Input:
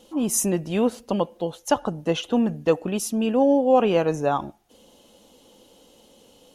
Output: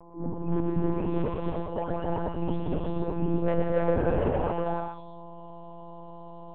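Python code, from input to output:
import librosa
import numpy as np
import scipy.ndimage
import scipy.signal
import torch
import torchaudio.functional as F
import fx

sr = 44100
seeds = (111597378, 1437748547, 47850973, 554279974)

p1 = fx.spec_delay(x, sr, highs='late', ms=825)
p2 = fx.peak_eq(p1, sr, hz=2700.0, db=-13.0, octaves=2.2)
p3 = p2 + 0.78 * np.pad(p2, (int(5.1 * sr / 1000.0), 0))[:len(p2)]
p4 = fx.level_steps(p3, sr, step_db=10)
p5 = p3 + (p4 * librosa.db_to_amplitude(2.5))
p6 = fx.dmg_buzz(p5, sr, base_hz=120.0, harmonics=9, level_db=-42.0, tilt_db=-1, odd_only=False)
p7 = 10.0 ** (-15.5 / 20.0) * np.tanh(p6 / 10.0 ** (-15.5 / 20.0))
p8 = fx.air_absorb(p7, sr, metres=160.0)
p9 = p8 + fx.echo_single(p8, sr, ms=122, db=-4.0, dry=0)
p10 = fx.rev_gated(p9, sr, seeds[0], gate_ms=360, shape='rising', drr_db=-1.5)
p11 = fx.lpc_monotone(p10, sr, seeds[1], pitch_hz=170.0, order=10)
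y = p11 * librosa.db_to_amplitude(-8.0)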